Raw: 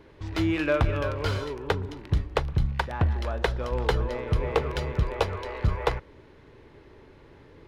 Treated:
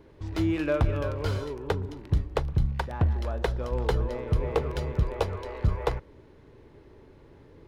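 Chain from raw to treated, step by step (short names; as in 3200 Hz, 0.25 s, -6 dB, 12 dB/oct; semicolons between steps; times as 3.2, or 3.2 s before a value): bell 2300 Hz -6.5 dB 2.8 oct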